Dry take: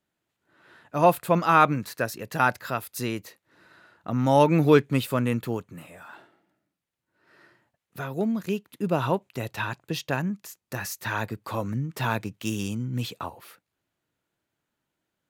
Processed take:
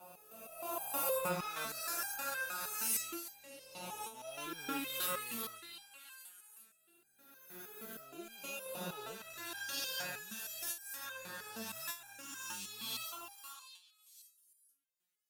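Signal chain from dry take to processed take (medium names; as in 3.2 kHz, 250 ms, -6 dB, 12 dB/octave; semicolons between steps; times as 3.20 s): reverse spectral sustain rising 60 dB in 2.52 s; pre-emphasis filter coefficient 0.9; short-mantissa float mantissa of 2-bit; rotary cabinet horn 0.9 Hz; on a send: repeats whose band climbs or falls 388 ms, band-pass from 1.3 kHz, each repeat 1.4 oct, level -5 dB; on the sum: slow attack 521 ms; resonator arpeggio 6.4 Hz 180–800 Hz; trim +11.5 dB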